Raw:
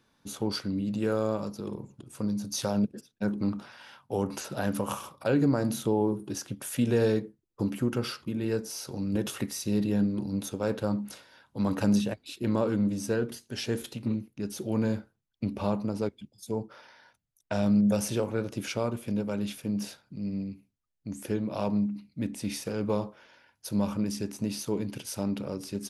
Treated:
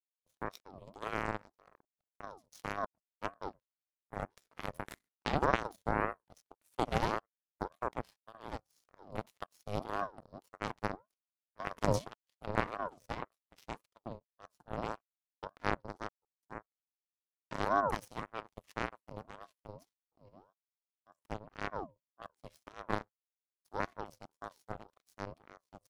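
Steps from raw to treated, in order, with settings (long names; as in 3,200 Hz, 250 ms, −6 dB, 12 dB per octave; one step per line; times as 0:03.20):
power curve on the samples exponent 3
ring modulator whose carrier an LFO sweeps 610 Hz, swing 50%, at 1.8 Hz
level +6 dB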